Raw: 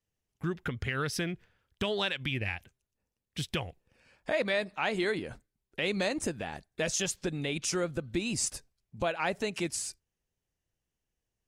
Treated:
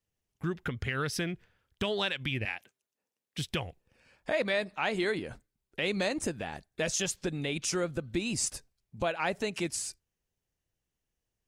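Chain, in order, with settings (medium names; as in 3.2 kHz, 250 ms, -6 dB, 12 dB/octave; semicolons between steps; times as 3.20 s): 2.45–3.38 s: high-pass 290 Hz 12 dB/octave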